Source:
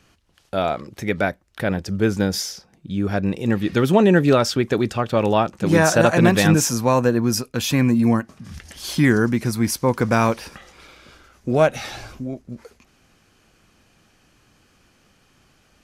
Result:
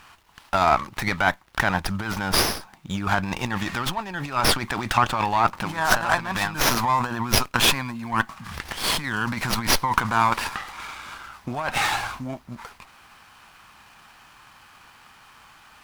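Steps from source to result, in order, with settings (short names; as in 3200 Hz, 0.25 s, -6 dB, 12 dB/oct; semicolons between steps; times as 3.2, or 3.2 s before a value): negative-ratio compressor -23 dBFS, ratio -1; bit-crush 11-bit; resonant low shelf 660 Hz -11.5 dB, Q 3; running maximum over 5 samples; gain +5 dB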